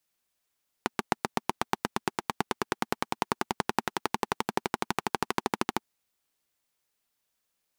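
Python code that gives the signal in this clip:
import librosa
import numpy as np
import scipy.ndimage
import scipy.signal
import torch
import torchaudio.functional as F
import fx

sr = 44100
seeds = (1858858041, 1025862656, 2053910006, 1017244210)

y = fx.engine_single_rev(sr, seeds[0], length_s=4.94, rpm=900, resonances_hz=(230.0, 370.0, 820.0), end_rpm=1600)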